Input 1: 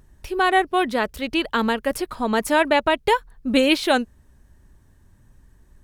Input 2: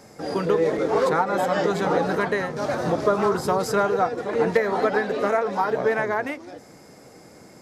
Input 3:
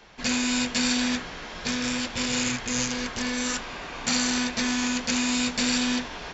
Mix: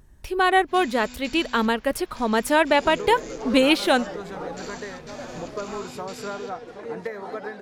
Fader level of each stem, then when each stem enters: −0.5, −11.5, −17.5 decibels; 0.00, 2.50, 0.50 seconds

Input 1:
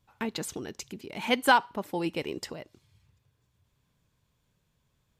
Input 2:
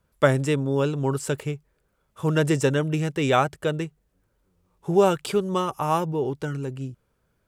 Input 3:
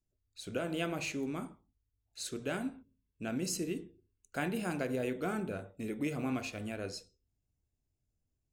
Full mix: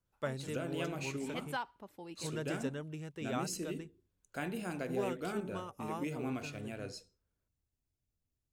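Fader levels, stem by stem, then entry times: −17.5, −19.0, −4.0 decibels; 0.05, 0.00, 0.00 seconds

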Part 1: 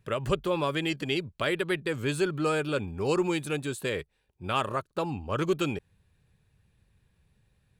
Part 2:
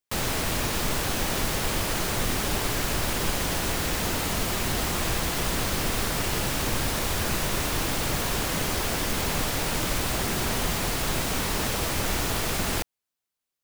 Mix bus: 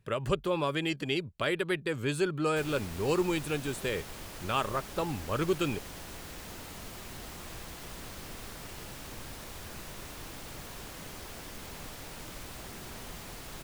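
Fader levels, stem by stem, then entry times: −2.0, −17.0 decibels; 0.00, 2.45 seconds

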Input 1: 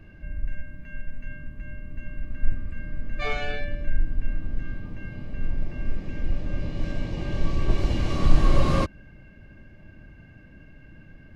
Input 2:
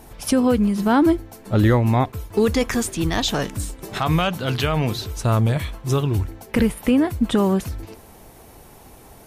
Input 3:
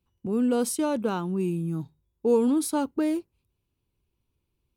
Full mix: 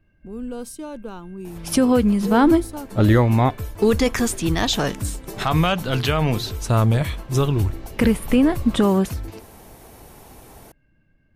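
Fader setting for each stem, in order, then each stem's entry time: −14.5, +1.0, −7.5 decibels; 0.00, 1.45, 0.00 seconds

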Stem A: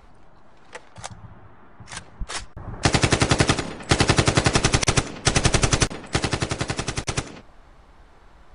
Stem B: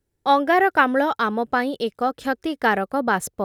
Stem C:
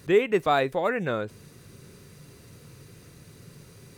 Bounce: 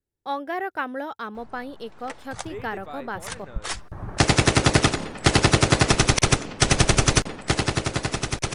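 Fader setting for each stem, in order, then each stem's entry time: +0.5, −11.5, −17.0 decibels; 1.35, 0.00, 2.40 seconds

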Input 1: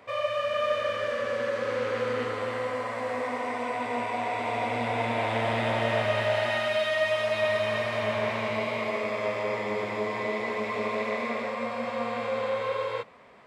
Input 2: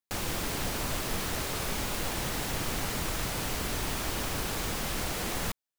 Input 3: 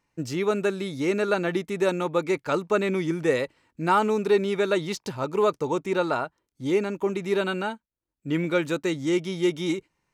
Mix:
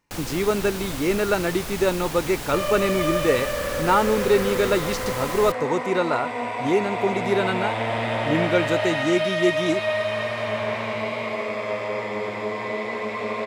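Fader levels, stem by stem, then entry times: +2.0, 0.0, +2.0 decibels; 2.45, 0.00, 0.00 seconds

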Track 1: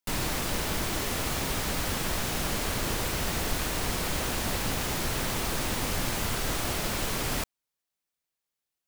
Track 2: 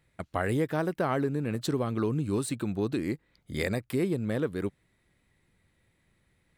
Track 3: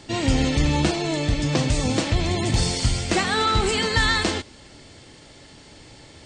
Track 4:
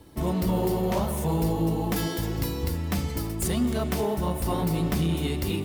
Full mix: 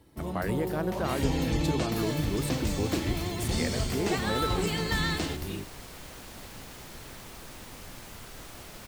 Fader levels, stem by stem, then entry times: −15.0, −3.5, −10.0, −8.5 decibels; 1.90, 0.00, 0.95, 0.00 seconds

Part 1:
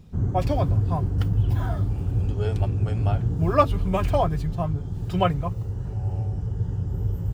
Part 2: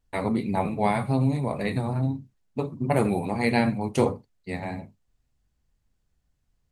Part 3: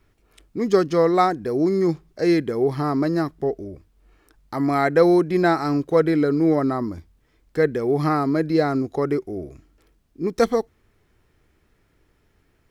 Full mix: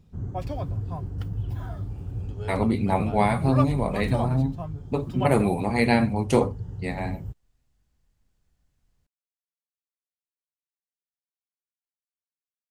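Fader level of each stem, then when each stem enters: −8.5 dB, +2.0 dB, muted; 0.00 s, 2.35 s, muted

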